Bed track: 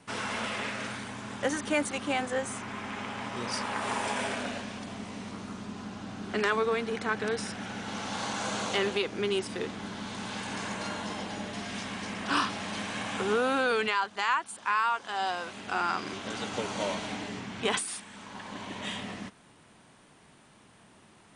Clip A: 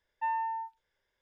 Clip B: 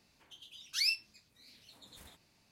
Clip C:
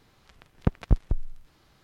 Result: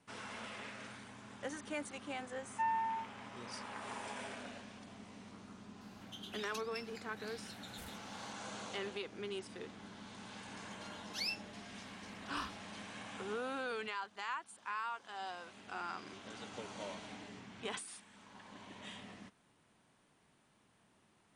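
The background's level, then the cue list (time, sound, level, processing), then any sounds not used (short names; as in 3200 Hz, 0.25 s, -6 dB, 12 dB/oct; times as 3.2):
bed track -13.5 dB
2.37 add A -3 dB
5.81 add B -4.5 dB + negative-ratio compressor -42 dBFS, ratio -0.5
10.4 add B -4 dB + tilt -2 dB/oct
not used: C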